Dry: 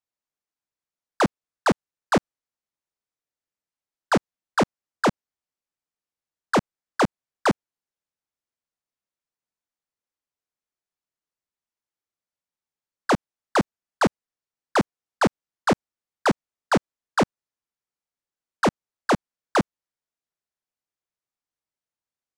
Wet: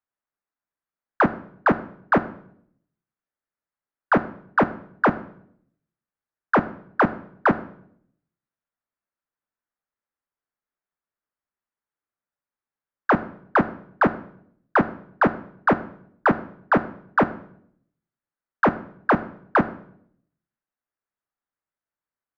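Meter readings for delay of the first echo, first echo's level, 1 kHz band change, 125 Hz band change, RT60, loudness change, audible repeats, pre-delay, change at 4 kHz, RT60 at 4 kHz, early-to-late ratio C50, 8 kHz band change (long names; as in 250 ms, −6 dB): no echo audible, no echo audible, +3.5 dB, 0.0 dB, 0.65 s, +2.0 dB, no echo audible, 3 ms, −12.0 dB, 0.55 s, 15.5 dB, below −20 dB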